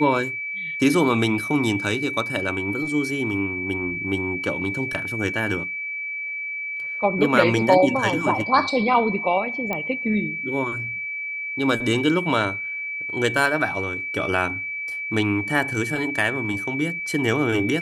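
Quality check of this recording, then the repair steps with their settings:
whine 2.3 kHz -27 dBFS
9.73 s: pop -13 dBFS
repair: de-click; band-stop 2.3 kHz, Q 30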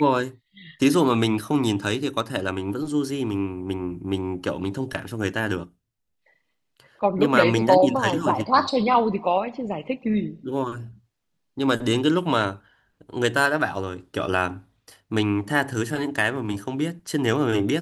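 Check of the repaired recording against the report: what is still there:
nothing left

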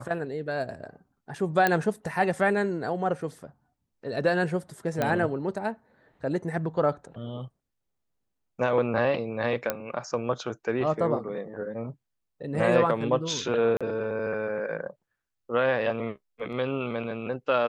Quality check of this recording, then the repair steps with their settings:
1.67 s: pop -9 dBFS
5.02 s: pop -13 dBFS
9.70 s: pop -11 dBFS
13.77–13.81 s: dropout 36 ms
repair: de-click; interpolate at 13.77 s, 36 ms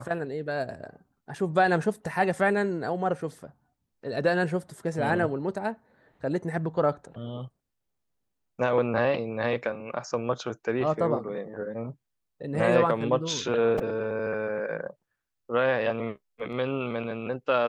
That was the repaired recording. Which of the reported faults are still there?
9.70 s: pop

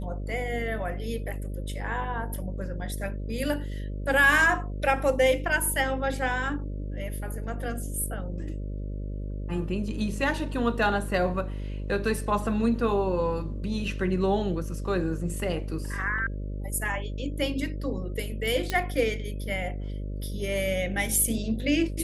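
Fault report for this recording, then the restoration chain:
buzz 50 Hz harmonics 12 -33 dBFS
18.70 s: pop -13 dBFS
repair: de-click; de-hum 50 Hz, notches 12

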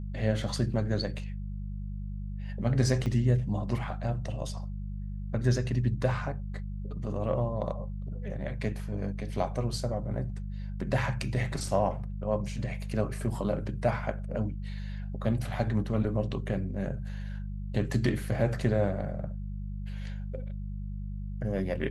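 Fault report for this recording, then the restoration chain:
hum 50 Hz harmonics 4 -36 dBFS
3.06–3.07 s: dropout 5.3 ms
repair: de-hum 50 Hz, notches 4; interpolate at 3.06 s, 5.3 ms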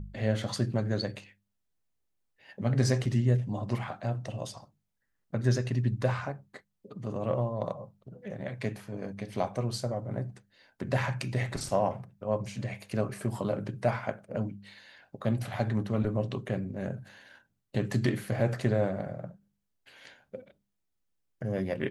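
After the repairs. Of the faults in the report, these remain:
nothing left

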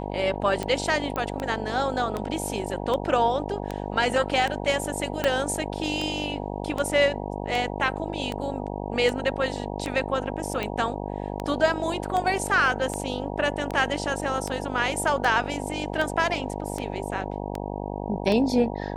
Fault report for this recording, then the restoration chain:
buzz 50 Hz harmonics 19 -32 dBFS
tick 78 rpm -15 dBFS
1.16 s: pop -16 dBFS
5.24 s: pop -9 dBFS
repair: de-click; de-hum 50 Hz, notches 19

